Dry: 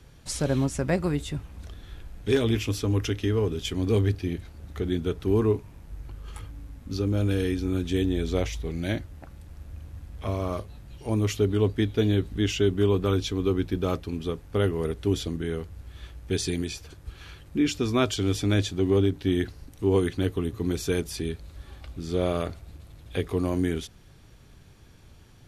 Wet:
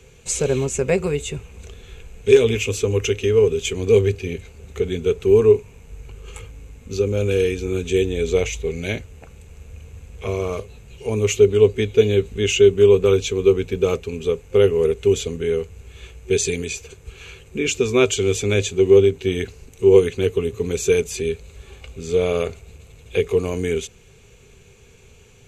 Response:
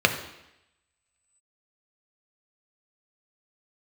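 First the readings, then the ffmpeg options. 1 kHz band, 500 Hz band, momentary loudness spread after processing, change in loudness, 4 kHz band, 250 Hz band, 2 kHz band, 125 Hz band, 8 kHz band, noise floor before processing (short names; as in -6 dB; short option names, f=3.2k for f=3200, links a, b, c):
+1.5 dB, +11.5 dB, 15 LU, +8.0 dB, +5.5 dB, +1.0 dB, +8.0 dB, +1.5 dB, +11.0 dB, -51 dBFS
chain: -af "superequalizer=6b=0.501:7b=3.55:12b=3.16:13b=1.41:15b=3.55,volume=1.5dB"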